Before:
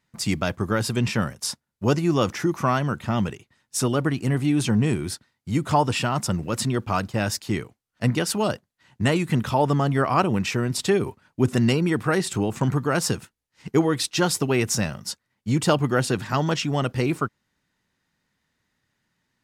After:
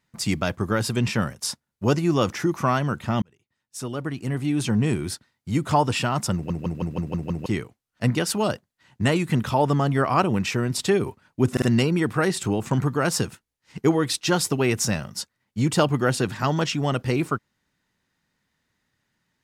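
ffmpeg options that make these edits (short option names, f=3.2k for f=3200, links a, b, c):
-filter_complex "[0:a]asplit=11[a][b][c][d][e][f][g][h][i][j][k];[a]atrim=end=3.22,asetpts=PTS-STARTPTS,afade=t=out:st=3.216:d=0.004:c=hsin[l];[b]atrim=start=3.22:end=6.502,asetpts=PTS-STARTPTS,afade=t=in:d=1.75[m];[c]atrim=start=6.338:end=6.502[n];[d]atrim=start=6.338:end=6.502[o];[e]atrim=start=6.338:end=6.502[p];[f]atrim=start=6.338:end=6.502[q];[g]atrim=start=6.338:end=6.502[r];[h]atrim=start=6.338:end=6.502[s];[i]atrim=start=7.458:end=11.572[t];[j]atrim=start=11.518:end=11.572[u];[k]atrim=start=11.518[v];[l][m]concat=n=2:v=0:a=1[w];[w][n]acrossfade=d=0.004:c1=hsin:c2=hsin[x];[x][o]acrossfade=d=0.004:c1=hsin:c2=hsin[y];[y][p]acrossfade=d=0.004:c1=hsin:c2=hsin[z];[z][q]acrossfade=d=0.004:c1=hsin:c2=hsin[aa];[aa][r]acrossfade=d=0.004:c1=hsin:c2=hsin[ab];[ab][s]acrossfade=d=0.004:c1=hsin:c2=hsin[ac];[ac][t]acrossfade=d=0.004:c1=hsin:c2=hsin[ad];[ad][u]acrossfade=d=0.004:c1=hsin:c2=hsin[ae];[ae][v]acrossfade=d=0.004:c1=hsin:c2=hsin"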